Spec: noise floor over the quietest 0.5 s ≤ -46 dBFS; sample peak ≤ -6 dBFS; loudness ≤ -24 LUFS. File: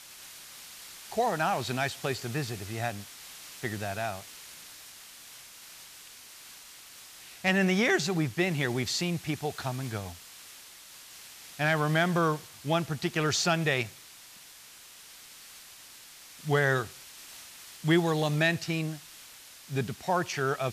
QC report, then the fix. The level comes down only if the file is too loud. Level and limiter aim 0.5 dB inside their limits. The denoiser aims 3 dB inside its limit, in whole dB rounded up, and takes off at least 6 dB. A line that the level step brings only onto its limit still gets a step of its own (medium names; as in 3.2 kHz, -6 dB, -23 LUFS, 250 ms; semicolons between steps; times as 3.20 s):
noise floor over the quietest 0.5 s -51 dBFS: pass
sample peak -12.5 dBFS: pass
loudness -29.0 LUFS: pass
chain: none needed